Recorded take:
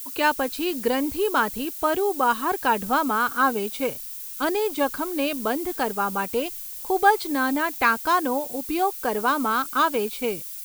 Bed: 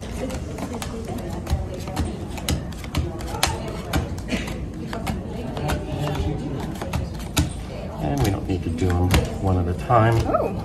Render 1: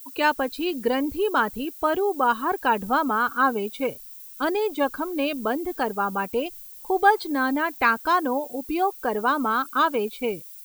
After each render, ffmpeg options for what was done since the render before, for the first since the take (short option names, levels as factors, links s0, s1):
-af "afftdn=nr=10:nf=-36"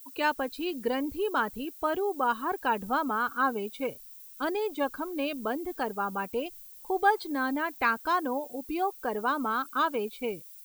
-af "volume=0.501"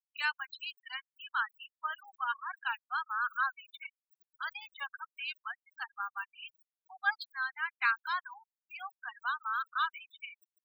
-af "highpass=f=1300:w=0.5412,highpass=f=1300:w=1.3066,afftfilt=real='re*gte(hypot(re,im),0.0178)':imag='im*gte(hypot(re,im),0.0178)':win_size=1024:overlap=0.75"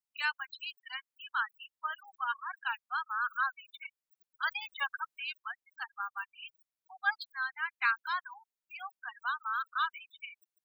-filter_complex "[0:a]asettb=1/sr,asplit=3[s0][s1][s2];[s0]atrim=end=4.434[s3];[s1]atrim=start=4.43:end=5.17,asetpts=PTS-STARTPTS,afade=t=in:d=0.004:c=qsin,afade=t=out:st=0.736:d=0.004:c=qsin,acontrast=57[s4];[s2]atrim=start=5.166[s5];[s3][s4]acrossfade=d=0.004:c1=hsin:c2=qsin[s6];[s6][s5]acrossfade=d=0.004:c1=qsin:c2=hsin"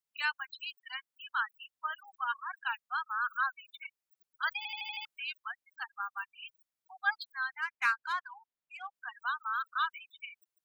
-filter_complex "[0:a]asplit=3[s0][s1][s2];[s0]afade=t=out:st=7.61:d=0.02[s3];[s1]adynamicsmooth=sensitivity=7.5:basefreq=3700,afade=t=in:st=7.61:d=0.02,afade=t=out:st=8.93:d=0.02[s4];[s2]afade=t=in:st=8.93:d=0.02[s5];[s3][s4][s5]amix=inputs=3:normalize=0,asplit=7[s6][s7][s8][s9][s10][s11][s12];[s6]atrim=end=4.652[s13];[s7]atrim=start=4.568:end=4.652[s14];[s8]atrim=start=4.568:end=4.652[s15];[s9]atrim=start=4.568:end=4.652[s16];[s10]atrim=start=4.568:end=4.652[s17];[s11]atrim=start=4.568:end=4.652[s18];[s12]atrim=start=5.048[s19];[s13][s14]acrossfade=d=0.004:c1=hsin:c2=hsin[s20];[s20][s15]acrossfade=d=0.004:c1=hsin:c2=hsin[s21];[s21][s16]acrossfade=d=0.004:c1=hsin:c2=hsin[s22];[s22][s17]acrossfade=d=0.004:c1=hsin:c2=hsin[s23];[s23][s18]acrossfade=d=0.004:c1=hsin:c2=hsin[s24];[s24][s19]acrossfade=d=0.004:c1=hsin:c2=hsin"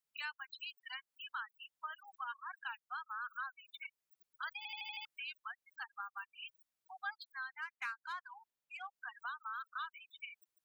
-af "acompressor=threshold=0.00562:ratio=2.5"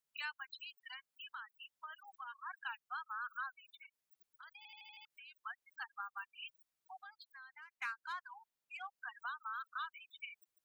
-filter_complex "[0:a]asettb=1/sr,asplit=3[s0][s1][s2];[s0]atrim=end=0.604[s3];[s1]atrim=start=0.6:end=2.4,asetpts=PTS-STARTPTS,afade=t=in:d=0.004:c=qsin,afade=t=out:st=1.796:d=0.004:c=qsin,acompressor=threshold=0.00398:ratio=2:attack=3.2:release=140:knee=1:detection=peak[s4];[s2]atrim=start=2.396[s5];[s3][s4]acrossfade=d=0.004:c1=hsin:c2=qsin[s6];[s6][s5]acrossfade=d=0.004:c1=qsin:c2=hsin,asettb=1/sr,asplit=3[s7][s8][s9];[s7]atrim=end=3.584[s10];[s8]atrim=start=3.58:end=5.37,asetpts=PTS-STARTPTS,afade=t=in:d=0.004:c=qsin,afade=t=out:st=1.786:d=0.004:c=qsin,acompressor=threshold=0.00141:ratio=3:attack=3.2:release=140:knee=1:detection=peak[s11];[s9]atrim=start=5.366[s12];[s10][s11]acrossfade=d=0.004:c1=hsin:c2=qsin[s13];[s13][s12]acrossfade=d=0.004:c1=qsin:c2=hsin,asettb=1/sr,asplit=3[s14][s15][s16];[s14]atrim=end=6.994[s17];[s15]atrim=start=6.99:end=7.73,asetpts=PTS-STARTPTS,afade=t=in:d=0.004:c=qsin,afade=t=out:st=0.736:d=0.004:c=qsin,acompressor=threshold=0.00224:ratio=4:attack=3.2:release=140:knee=1:detection=peak[s18];[s16]atrim=start=7.726[s19];[s17][s18]acrossfade=d=0.004:c1=hsin:c2=qsin[s20];[s20][s19]acrossfade=d=0.004:c1=qsin:c2=hsin"